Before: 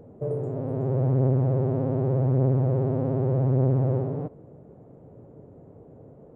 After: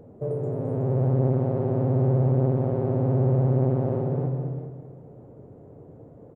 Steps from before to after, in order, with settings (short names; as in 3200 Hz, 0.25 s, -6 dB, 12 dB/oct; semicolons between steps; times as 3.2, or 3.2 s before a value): on a send: feedback echo 0.214 s, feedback 35%, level -8 dB; on the sum: non-linear reverb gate 0.42 s rising, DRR 8 dB